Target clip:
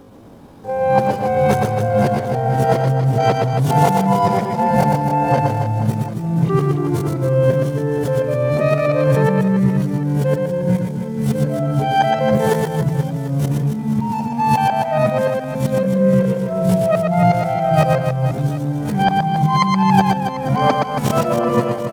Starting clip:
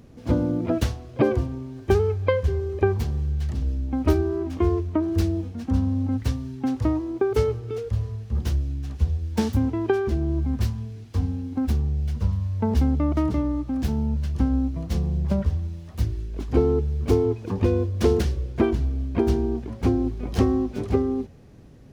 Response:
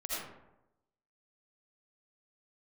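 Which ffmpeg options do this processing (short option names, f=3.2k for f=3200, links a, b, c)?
-af "areverse,asetrate=88200,aresample=44100,atempo=0.5,aecho=1:1:120|276|478.8|742.4|1085:0.631|0.398|0.251|0.158|0.1,volume=5dB"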